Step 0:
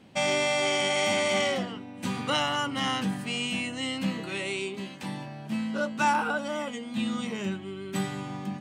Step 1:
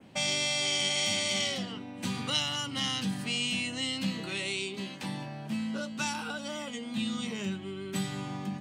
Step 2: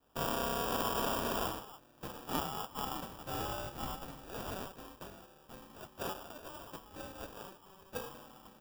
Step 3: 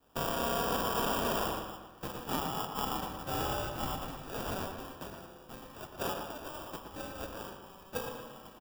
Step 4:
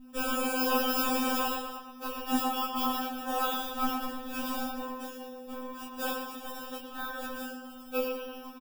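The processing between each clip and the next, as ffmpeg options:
-filter_complex "[0:a]adynamicequalizer=threshold=0.00708:dfrequency=4300:dqfactor=1.2:tfrequency=4300:tqfactor=1.2:attack=5:release=100:ratio=0.375:range=3:mode=boostabove:tftype=bell,acrossover=split=200|2700[s0][s1][s2];[s1]acompressor=threshold=0.0141:ratio=6[s3];[s0][s3][s2]amix=inputs=3:normalize=0"
-af "aderivative,acrusher=samples=21:mix=1:aa=0.000001,aexciter=amount=1.6:drive=7.7:freq=11000"
-filter_complex "[0:a]alimiter=limit=0.0708:level=0:latency=1:release=292,asplit=2[s0][s1];[s1]adelay=116,lowpass=f=3700:p=1,volume=0.501,asplit=2[s2][s3];[s3]adelay=116,lowpass=f=3700:p=1,volume=0.5,asplit=2[s4][s5];[s5]adelay=116,lowpass=f=3700:p=1,volume=0.5,asplit=2[s6][s7];[s7]adelay=116,lowpass=f=3700:p=1,volume=0.5,asplit=2[s8][s9];[s9]adelay=116,lowpass=f=3700:p=1,volume=0.5,asplit=2[s10][s11];[s11]adelay=116,lowpass=f=3700:p=1,volume=0.5[s12];[s0][s2][s4][s6][s8][s10][s12]amix=inputs=7:normalize=0,volume=1.58"
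-filter_complex "[0:a]aeval=exprs='val(0)+0.00316*(sin(2*PI*50*n/s)+sin(2*PI*2*50*n/s)/2+sin(2*PI*3*50*n/s)/3+sin(2*PI*4*50*n/s)/4+sin(2*PI*5*50*n/s)/5)':c=same,asplit=2[s0][s1];[s1]adelay=24,volume=0.75[s2];[s0][s2]amix=inputs=2:normalize=0,afftfilt=real='re*3.46*eq(mod(b,12),0)':imag='im*3.46*eq(mod(b,12),0)':win_size=2048:overlap=0.75,volume=1.68"

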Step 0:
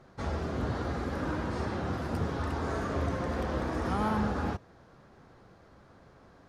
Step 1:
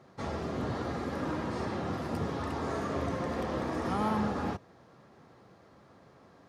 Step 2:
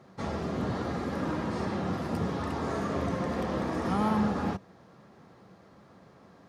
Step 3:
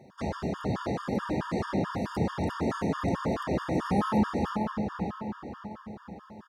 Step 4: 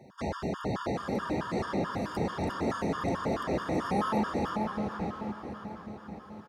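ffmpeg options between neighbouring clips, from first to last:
-af "highpass=110,bandreject=f=1500:w=11"
-af "equalizer=f=190:w=4.7:g=6.5,volume=1.19"
-filter_complex "[0:a]asplit=2[s0][s1];[s1]adelay=550,lowpass=f=5000:p=1,volume=0.562,asplit=2[s2][s3];[s3]adelay=550,lowpass=f=5000:p=1,volume=0.51,asplit=2[s4][s5];[s5]adelay=550,lowpass=f=5000:p=1,volume=0.51,asplit=2[s6][s7];[s7]adelay=550,lowpass=f=5000:p=1,volume=0.51,asplit=2[s8][s9];[s9]adelay=550,lowpass=f=5000:p=1,volume=0.51,asplit=2[s10][s11];[s11]adelay=550,lowpass=f=5000:p=1,volume=0.51[s12];[s0][s2][s4][s6][s8][s10][s12]amix=inputs=7:normalize=0,afftfilt=real='re*gt(sin(2*PI*4.6*pts/sr)*(1-2*mod(floor(b*sr/1024/920),2)),0)':imag='im*gt(sin(2*PI*4.6*pts/sr)*(1-2*mod(floor(b*sr/1024/920),2)),0)':win_size=1024:overlap=0.75,volume=1.41"
-filter_complex "[0:a]acrossover=split=300[s0][s1];[s0]asoftclip=type=tanh:threshold=0.0299[s2];[s2][s1]amix=inputs=2:normalize=0,aecho=1:1:766|1532|2298|3064:0.141|0.0678|0.0325|0.0156"

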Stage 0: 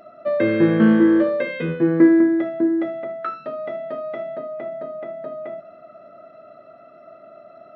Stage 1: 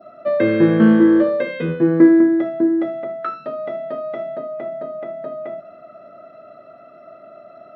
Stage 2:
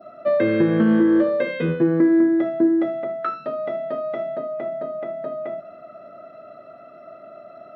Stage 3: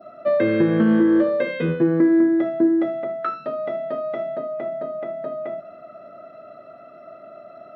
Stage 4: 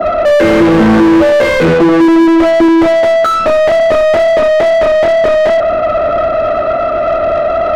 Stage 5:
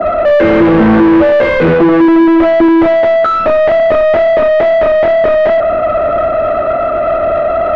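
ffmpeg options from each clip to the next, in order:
-af "adynamicequalizer=threshold=0.00631:dfrequency=2200:dqfactor=1.4:tfrequency=2200:tqfactor=1.4:attack=5:release=100:ratio=0.375:range=2:mode=cutabove:tftype=bell,volume=1.33"
-af "alimiter=limit=0.355:level=0:latency=1:release=284"
-af anull
-filter_complex "[0:a]asplit=2[s0][s1];[s1]highpass=f=720:p=1,volume=79.4,asoftclip=type=tanh:threshold=0.376[s2];[s0][s2]amix=inputs=2:normalize=0,lowpass=f=1100:p=1,volume=0.501,volume=2.37"
-af "lowpass=2700"

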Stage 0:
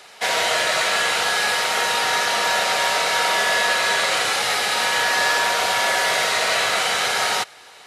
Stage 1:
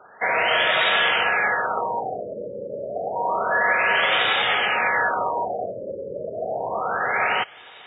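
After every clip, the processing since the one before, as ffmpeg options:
-af "highshelf=f=4600:g=12,afftfilt=real='re*lt(b*sr/1024,590*pow(3800/590,0.5+0.5*sin(2*PI*0.29*pts/sr)))':imag='im*lt(b*sr/1024,590*pow(3800/590,0.5+0.5*sin(2*PI*0.29*pts/sr)))':win_size=1024:overlap=0.75"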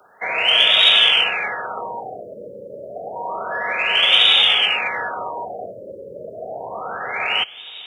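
-filter_complex "[0:a]acrossover=split=200|460[s0][s1][s2];[s1]aphaser=in_gain=1:out_gain=1:delay=3.1:decay=0.2:speed=1.6:type=sinusoidal[s3];[s2]aexciter=amount=8.4:drive=5.6:freq=2700[s4];[s0][s3][s4]amix=inputs=3:normalize=0,volume=0.668"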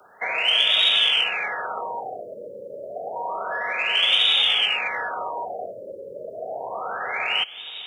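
-filter_complex "[0:a]acrossover=split=380|3200[s0][s1][s2];[s0]acompressor=threshold=0.00251:ratio=4[s3];[s1]acompressor=threshold=0.0562:ratio=4[s4];[s2]acompressor=threshold=0.112:ratio=4[s5];[s3][s4][s5]amix=inputs=3:normalize=0"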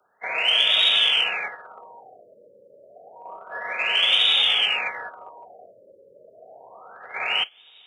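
-af "agate=range=0.178:threshold=0.0501:ratio=16:detection=peak"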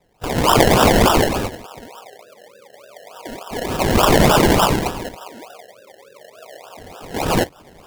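-af "acrusher=samples=29:mix=1:aa=0.000001:lfo=1:lforange=17.4:lforate=3.4,volume=2.11"

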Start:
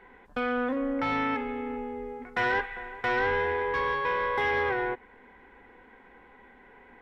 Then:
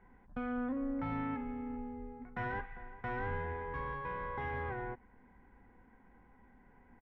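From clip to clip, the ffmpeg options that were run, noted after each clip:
-af "firequalizer=gain_entry='entry(160,0);entry(420,-16);entry(680,-11);entry(4300,-27)':delay=0.05:min_phase=1,volume=1.12"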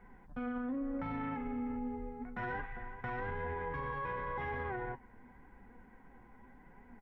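-af "flanger=delay=4:depth=5.2:regen=55:speed=0.87:shape=triangular,alimiter=level_in=6.31:limit=0.0631:level=0:latency=1:release=33,volume=0.158,volume=2.66"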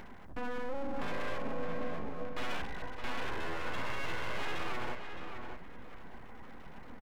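-filter_complex "[0:a]acompressor=mode=upward:threshold=0.00562:ratio=2.5,aeval=exprs='abs(val(0))':c=same,asplit=2[s0][s1];[s1]adelay=615,lowpass=f=3300:p=1,volume=0.473,asplit=2[s2][s3];[s3]adelay=615,lowpass=f=3300:p=1,volume=0.24,asplit=2[s4][s5];[s5]adelay=615,lowpass=f=3300:p=1,volume=0.24[s6];[s0][s2][s4][s6]amix=inputs=4:normalize=0,volume=1.58"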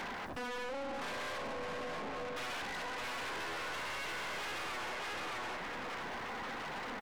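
-filter_complex "[0:a]acompressor=threshold=0.0126:ratio=4,asplit=2[s0][s1];[s1]highpass=f=720:p=1,volume=31.6,asoftclip=type=tanh:threshold=0.0335[s2];[s0][s2]amix=inputs=2:normalize=0,lowpass=f=5400:p=1,volume=0.501,asoftclip=type=tanh:threshold=0.02,volume=0.794"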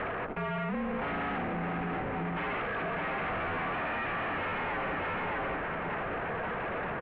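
-af "highpass=f=350:t=q:w=0.5412,highpass=f=350:t=q:w=1.307,lowpass=f=2900:t=q:w=0.5176,lowpass=f=2900:t=q:w=0.7071,lowpass=f=2900:t=q:w=1.932,afreqshift=-320,volume=2.51"

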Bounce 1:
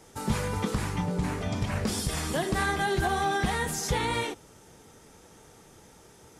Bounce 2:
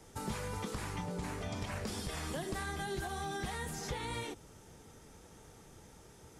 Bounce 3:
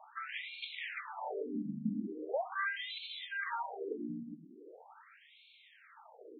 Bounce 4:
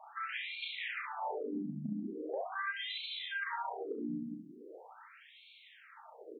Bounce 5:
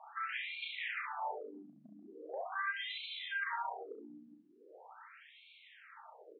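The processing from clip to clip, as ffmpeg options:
-filter_complex "[0:a]lowshelf=f=130:g=7.5,acrossover=split=310|4100[s0][s1][s2];[s0]acompressor=threshold=0.0141:ratio=4[s3];[s1]acompressor=threshold=0.0158:ratio=4[s4];[s2]acompressor=threshold=0.00631:ratio=4[s5];[s3][s4][s5]amix=inputs=3:normalize=0,volume=0.596"
-af "asoftclip=type=hard:threshold=0.0211,afftfilt=real='re*between(b*sr/1024,210*pow(3100/210,0.5+0.5*sin(2*PI*0.41*pts/sr))/1.41,210*pow(3100/210,0.5+0.5*sin(2*PI*0.41*pts/sr))*1.41)':imag='im*between(b*sr/1024,210*pow(3100/210,0.5+0.5*sin(2*PI*0.41*pts/sr))/1.41,210*pow(3100/210,0.5+0.5*sin(2*PI*0.41*pts/sr))*1.41)':win_size=1024:overlap=0.75,volume=2.99"
-filter_complex "[0:a]acompressor=threshold=0.0126:ratio=6,asplit=2[s0][s1];[s1]aecho=0:1:34|67:0.631|0.501[s2];[s0][s2]amix=inputs=2:normalize=0,volume=1.12"
-af "highpass=670,lowpass=3200,volume=1.12"

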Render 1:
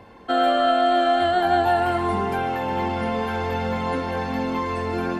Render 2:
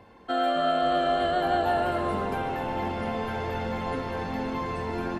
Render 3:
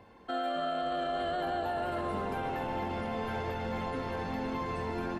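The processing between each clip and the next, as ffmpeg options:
-filter_complex "[0:a]asplit=8[s0][s1][s2][s3][s4][s5][s6][s7];[s1]adelay=263,afreqshift=-100,volume=0.316[s8];[s2]adelay=526,afreqshift=-200,volume=0.193[s9];[s3]adelay=789,afreqshift=-300,volume=0.117[s10];[s4]adelay=1052,afreqshift=-400,volume=0.0716[s11];[s5]adelay=1315,afreqshift=-500,volume=0.0437[s12];[s6]adelay=1578,afreqshift=-600,volume=0.0266[s13];[s7]adelay=1841,afreqshift=-700,volume=0.0162[s14];[s0][s8][s9][s10][s11][s12][s13][s14]amix=inputs=8:normalize=0,volume=0.501"
-af "alimiter=limit=0.0794:level=0:latency=1,volume=0.668"

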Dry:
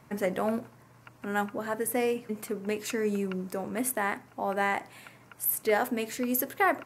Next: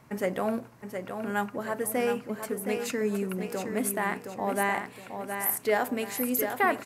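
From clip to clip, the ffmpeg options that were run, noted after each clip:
-af "aecho=1:1:717|1434|2151|2868:0.447|0.161|0.0579|0.0208"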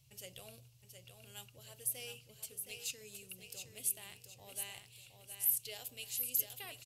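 -af "firequalizer=gain_entry='entry(130,0);entry(200,-29);entry(500,-19);entry(980,-26);entry(1800,-23);entry(2800,3)':delay=0.05:min_phase=1,volume=0.501"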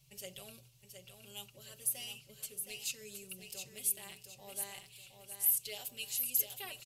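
-af "aecho=1:1:5.2:0.96"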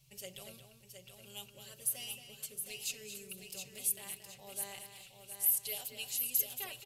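-filter_complex "[0:a]asplit=2[s0][s1];[s1]adelay=227.4,volume=0.398,highshelf=f=4000:g=-5.12[s2];[s0][s2]amix=inputs=2:normalize=0"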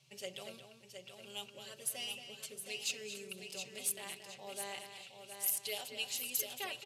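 -af "highpass=220,adynamicsmooth=sensitivity=2.5:basefreq=6500,volume=1.78"

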